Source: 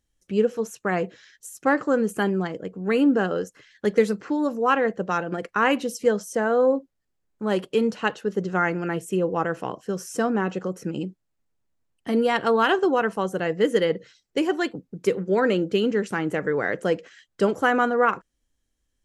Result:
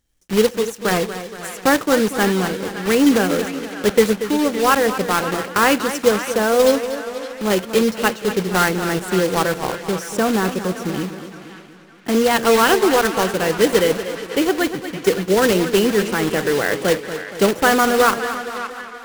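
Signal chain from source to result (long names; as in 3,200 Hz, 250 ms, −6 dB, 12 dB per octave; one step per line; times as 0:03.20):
one scale factor per block 3 bits
feedback echo with a band-pass in the loop 563 ms, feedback 48%, band-pass 2,000 Hz, level −10.5 dB
feedback echo with a swinging delay time 236 ms, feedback 55%, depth 86 cents, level −11.5 dB
level +5 dB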